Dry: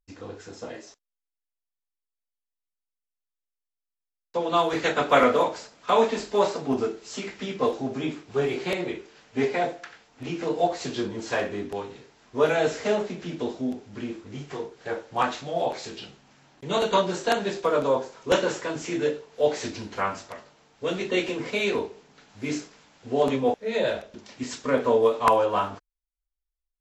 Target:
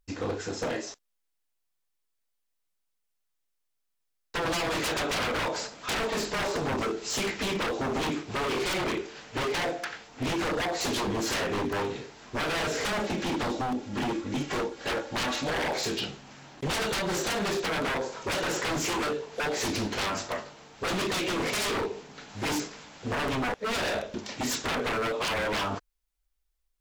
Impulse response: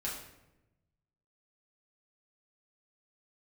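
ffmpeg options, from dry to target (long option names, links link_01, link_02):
-filter_complex "[0:a]asettb=1/sr,asplit=3[link_01][link_02][link_03];[link_01]atrim=end=12.924[link_04];[link_02]atrim=start=12.92:end=15.58,asetpts=PTS-STARTPTS,afade=type=in:duration=0.004:curve=qsin,afade=type=out:start_time=2.656:duration=0.004:curve=qsin,aecho=1:1:3.6:0.51,atrim=end_sample=117306[link_05];[link_03]atrim=start=15.576[link_06];[link_04][link_05]acrossfade=duration=0.004:curve1=hsin:curve2=qsin[link_07];[link_07][link_06]acrossfade=duration=0.004:curve1=qsin:curve2=hsin,acompressor=threshold=-27dB:ratio=6,aeval=exprs='0.0237*(abs(mod(val(0)/0.0237+3,4)-2)-1)':channel_layout=same,volume=8.5dB"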